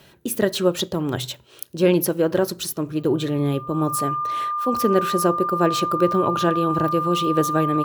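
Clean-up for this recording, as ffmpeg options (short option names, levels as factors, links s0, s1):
-af "bandreject=f=1200:w=30"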